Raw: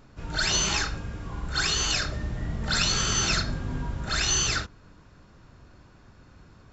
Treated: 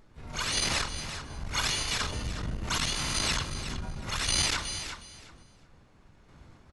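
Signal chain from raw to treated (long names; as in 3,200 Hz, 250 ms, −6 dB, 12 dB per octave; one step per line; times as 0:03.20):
mains-hum notches 60/120/180/240/300/360 Hz
pitch-shifted copies added −7 semitones −2 dB, −4 semitones −1 dB, +7 semitones −2 dB
sample-and-hold tremolo
repeating echo 364 ms, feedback 20%, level −11 dB
saturating transformer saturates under 240 Hz
level −4.5 dB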